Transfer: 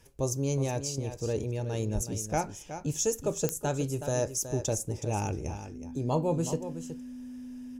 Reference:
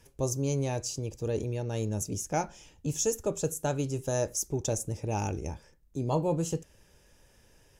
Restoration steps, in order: de-click; band-stop 250 Hz, Q 30; 1.94–2.06 s: high-pass 140 Hz 24 dB/octave; inverse comb 371 ms -10.5 dB

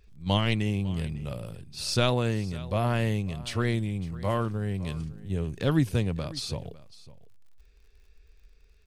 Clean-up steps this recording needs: de-click; inverse comb 553 ms -19 dB

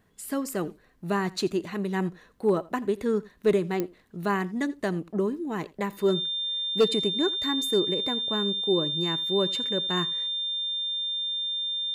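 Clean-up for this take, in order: clip repair -14.5 dBFS; de-click; band-stop 3.6 kHz, Q 30; inverse comb 84 ms -21.5 dB

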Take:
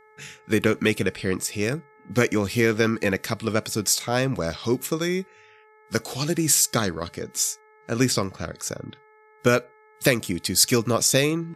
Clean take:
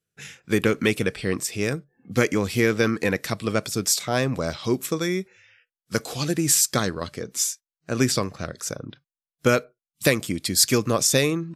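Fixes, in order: de-hum 430.6 Hz, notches 5

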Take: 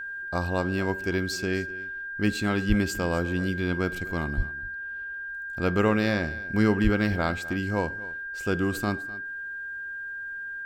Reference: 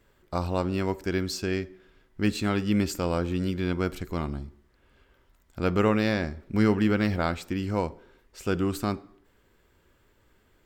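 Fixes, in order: band-stop 1.6 kHz, Q 30; 2.68–2.80 s: high-pass 140 Hz 24 dB/octave; 4.36–4.48 s: high-pass 140 Hz 24 dB/octave; 6.83–6.95 s: high-pass 140 Hz 24 dB/octave; inverse comb 252 ms -18.5 dB

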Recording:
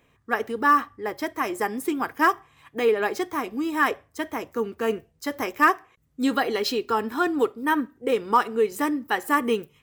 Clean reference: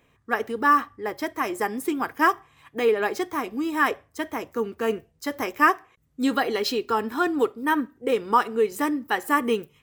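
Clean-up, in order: clip repair -8.5 dBFS

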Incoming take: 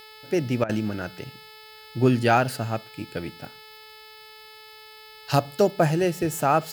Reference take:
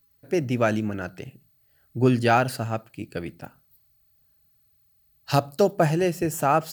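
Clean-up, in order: de-hum 433.7 Hz, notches 12; interpolate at 0.64 s, 51 ms; expander -39 dBFS, range -21 dB

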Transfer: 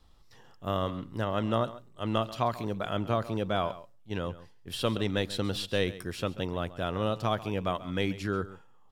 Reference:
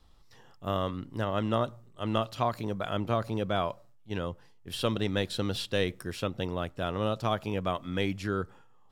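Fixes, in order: inverse comb 136 ms -16.5 dB

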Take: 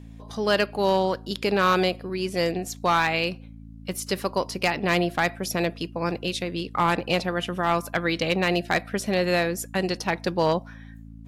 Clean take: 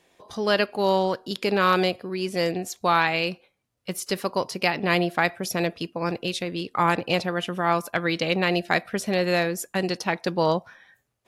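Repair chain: clip repair -13 dBFS; de-hum 55.3 Hz, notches 5

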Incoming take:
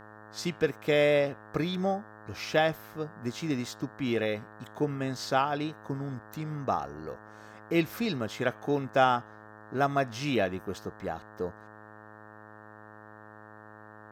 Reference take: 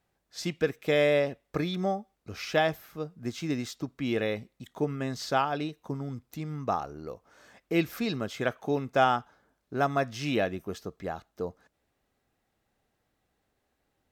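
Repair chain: de-hum 106.9 Hz, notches 17

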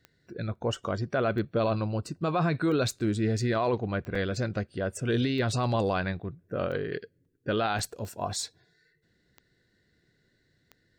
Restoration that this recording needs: de-click; interpolate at 0.55/4.15/7.25/7.79 s, 4 ms

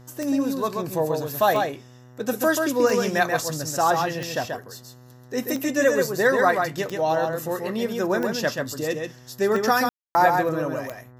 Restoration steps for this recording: de-click; de-hum 124.4 Hz, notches 16; room tone fill 9.89–10.15 s; inverse comb 134 ms -4.5 dB

